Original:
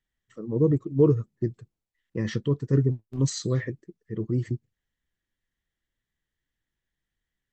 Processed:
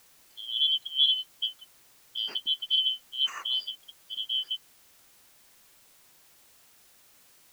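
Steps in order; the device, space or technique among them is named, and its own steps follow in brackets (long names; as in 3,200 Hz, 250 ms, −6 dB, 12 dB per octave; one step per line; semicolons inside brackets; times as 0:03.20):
split-band scrambled radio (band-splitting scrambler in four parts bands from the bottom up 3412; band-pass filter 330–3,300 Hz; white noise bed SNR 26 dB)
level −2 dB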